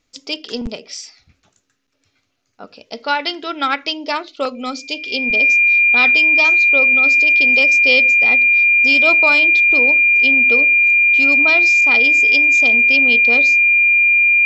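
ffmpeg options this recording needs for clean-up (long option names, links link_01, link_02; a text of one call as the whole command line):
ffmpeg -i in.wav -af "bandreject=frequency=2400:width=30" out.wav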